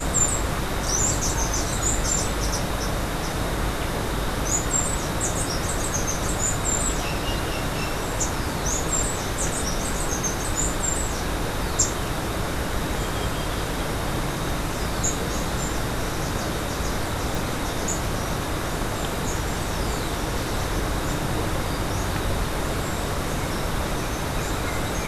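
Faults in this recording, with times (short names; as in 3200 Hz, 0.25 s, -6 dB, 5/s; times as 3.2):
17.35 pop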